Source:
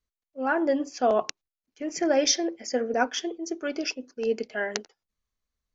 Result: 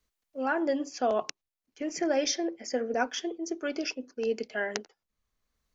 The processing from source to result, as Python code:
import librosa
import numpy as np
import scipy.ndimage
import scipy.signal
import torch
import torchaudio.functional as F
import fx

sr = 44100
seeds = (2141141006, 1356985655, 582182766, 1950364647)

y = fx.band_squash(x, sr, depth_pct=40)
y = F.gain(torch.from_numpy(y), -3.5).numpy()